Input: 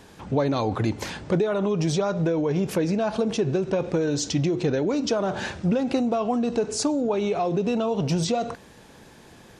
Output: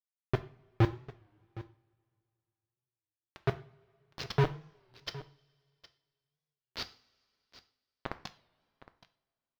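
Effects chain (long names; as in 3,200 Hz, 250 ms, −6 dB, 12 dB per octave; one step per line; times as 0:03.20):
hum removal 247.6 Hz, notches 34
gate on every frequency bin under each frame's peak −15 dB strong
drawn EQ curve 140 Hz 0 dB, 240 Hz −21 dB, 980 Hz −19 dB, 4,900 Hz +6 dB, 11,000 Hz −29 dB
bit reduction 4 bits
noise that follows the level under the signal 14 dB
high-frequency loss of the air 290 metres
single-tap delay 763 ms −18 dB
coupled-rooms reverb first 0.43 s, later 2.5 s, from −22 dB, DRR 11 dB
wow of a warped record 33 1/3 rpm, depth 160 cents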